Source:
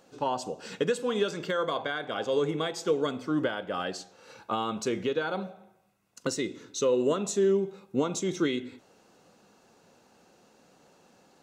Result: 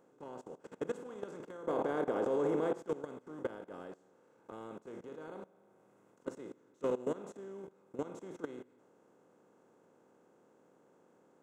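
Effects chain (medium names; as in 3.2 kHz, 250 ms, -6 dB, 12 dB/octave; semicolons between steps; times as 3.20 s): spectral levelling over time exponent 0.4; 1.67–2.78 s: peaking EQ 530 Hz +7.5 dB 2.6 oct; gate -21 dBFS, range -14 dB; level held to a coarse grid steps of 20 dB; peak limiter -18.5 dBFS, peak gain reduction 10.5 dB; peaking EQ 4.5 kHz -15 dB 1.9 oct; trim -5.5 dB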